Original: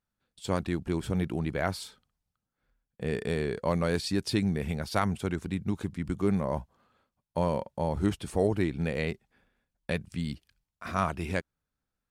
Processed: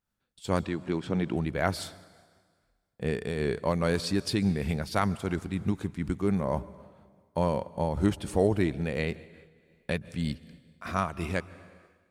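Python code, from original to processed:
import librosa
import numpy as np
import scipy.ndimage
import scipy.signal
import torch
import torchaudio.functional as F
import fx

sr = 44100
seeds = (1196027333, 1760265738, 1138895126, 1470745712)

y = fx.bandpass_edges(x, sr, low_hz=150.0, high_hz=5100.0, at=(0.64, 1.35), fade=0.02)
y = fx.rev_plate(y, sr, seeds[0], rt60_s=1.7, hf_ratio=0.95, predelay_ms=115, drr_db=18.0)
y = fx.am_noise(y, sr, seeds[1], hz=5.7, depth_pct=65)
y = F.gain(torch.from_numpy(y), 4.0).numpy()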